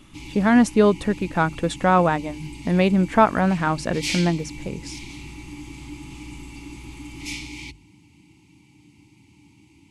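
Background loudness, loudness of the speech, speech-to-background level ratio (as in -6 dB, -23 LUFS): -35.5 LUFS, -20.5 LUFS, 15.0 dB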